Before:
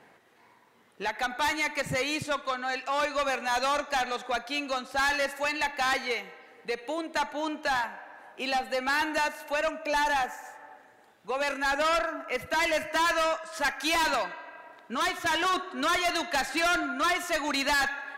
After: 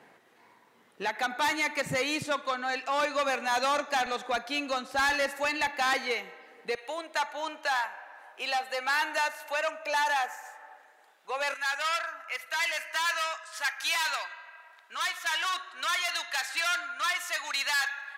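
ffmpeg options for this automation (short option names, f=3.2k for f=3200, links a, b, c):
-af "asetnsamples=n=441:p=0,asendcmd='4.06 highpass f 44;5.67 highpass f 180;6.75 highpass f 620;11.54 highpass f 1300',highpass=120"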